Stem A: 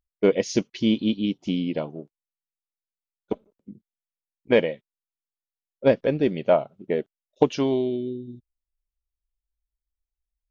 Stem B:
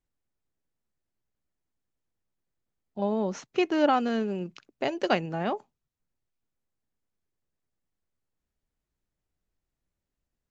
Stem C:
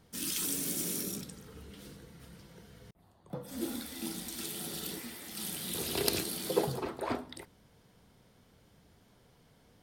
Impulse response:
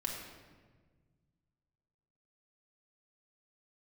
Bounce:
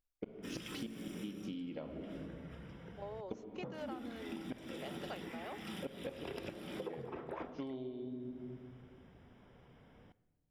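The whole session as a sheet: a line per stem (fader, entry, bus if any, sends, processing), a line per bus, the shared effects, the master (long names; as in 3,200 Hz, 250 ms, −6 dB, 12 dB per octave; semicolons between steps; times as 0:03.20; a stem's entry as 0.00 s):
−8.5 dB, 0.00 s, send −3 dB, mains-hum notches 60/120/180/240/300/360/420/480 Hz; gate with flip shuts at −12 dBFS, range −41 dB
−14.5 dB, 0.00 s, no send, Butterworth high-pass 380 Hz
+1.0 dB, 0.30 s, send −15 dB, Savitzky-Golay smoothing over 25 samples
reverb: on, RT60 1.5 s, pre-delay 4 ms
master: downward compressor 12 to 1, threshold −40 dBFS, peak gain reduction 20.5 dB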